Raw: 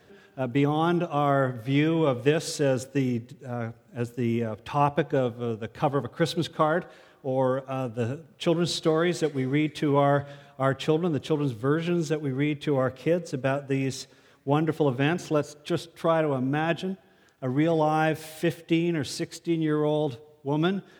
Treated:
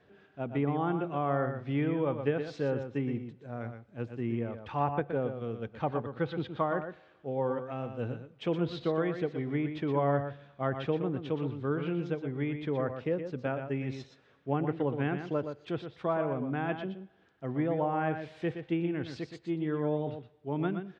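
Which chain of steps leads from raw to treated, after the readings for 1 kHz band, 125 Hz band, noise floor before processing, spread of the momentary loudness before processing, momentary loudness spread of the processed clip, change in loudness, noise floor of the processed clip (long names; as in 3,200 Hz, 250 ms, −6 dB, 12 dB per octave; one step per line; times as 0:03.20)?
−6.5 dB, −6.0 dB, −58 dBFS, 9 LU, 9 LU, −6.5 dB, −64 dBFS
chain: treble cut that deepens with the level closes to 2,200 Hz, closed at −19.5 dBFS
low-pass filter 3,200 Hz 12 dB per octave
single-tap delay 120 ms −8 dB
level −7 dB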